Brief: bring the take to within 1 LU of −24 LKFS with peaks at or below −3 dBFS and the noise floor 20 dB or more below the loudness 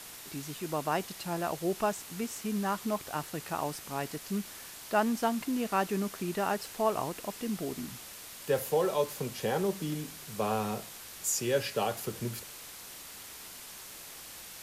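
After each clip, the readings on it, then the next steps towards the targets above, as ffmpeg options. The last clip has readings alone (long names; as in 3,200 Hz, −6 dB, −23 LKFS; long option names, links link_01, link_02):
background noise floor −47 dBFS; target noise floor −54 dBFS; integrated loudness −33.5 LKFS; sample peak −14.5 dBFS; target loudness −24.0 LKFS
→ -af "afftdn=noise_reduction=7:noise_floor=-47"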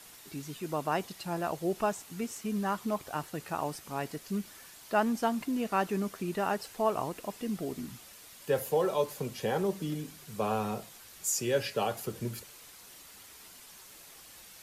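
background noise floor −52 dBFS; target noise floor −53 dBFS
→ -af "afftdn=noise_reduction=6:noise_floor=-52"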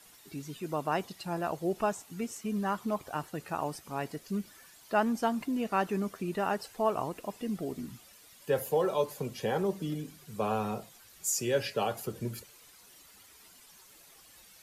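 background noise floor −57 dBFS; integrated loudness −33.5 LKFS; sample peak −15.0 dBFS; target loudness −24.0 LKFS
→ -af "volume=9.5dB"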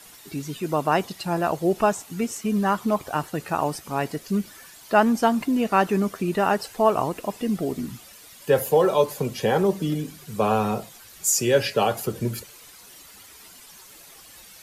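integrated loudness −24.0 LKFS; sample peak −5.5 dBFS; background noise floor −48 dBFS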